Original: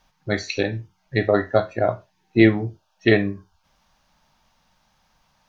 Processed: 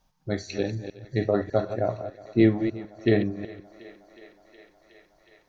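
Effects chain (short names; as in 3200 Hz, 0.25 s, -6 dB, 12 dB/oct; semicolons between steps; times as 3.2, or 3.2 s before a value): reverse delay 0.15 s, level -9.5 dB; bell 2100 Hz -9.5 dB 2.5 oct; on a send: thinning echo 0.366 s, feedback 84%, high-pass 320 Hz, level -19 dB; on the sum: gain -3 dB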